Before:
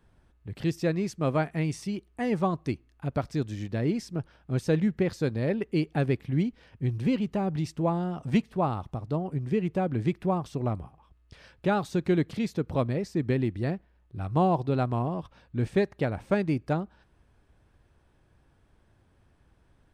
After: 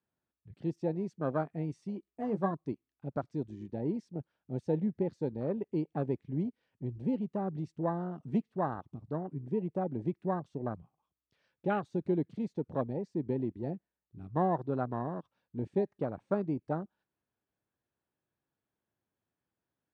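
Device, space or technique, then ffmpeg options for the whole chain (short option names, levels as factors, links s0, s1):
over-cleaned archive recording: -filter_complex "[0:a]bandreject=f=5100:w=19,asettb=1/sr,asplit=3[s0][s1][s2];[s0]atrim=end=1.964[s3];[s1]atrim=start=1.96:end=2.51,asetpts=PTS-STARTPTS,afade=t=in:d=0.004:c=qsin,afade=t=out:st=0.546:d=0.004:c=qsin,asplit=2[s4][s5];[s5]adelay=15,volume=0.422[s6];[s4][s6]amix=inputs=2:normalize=0,atrim=end_sample=24255[s7];[s2]atrim=start=2.506[s8];[s3][s7]acrossfade=d=0.004:c1=hsin:c2=qsin[s9];[s9][s8]acrossfade=d=0.004:c1=qsin:c2=hsin,highpass=160,lowpass=7500,afwtdn=0.0251,volume=0.562"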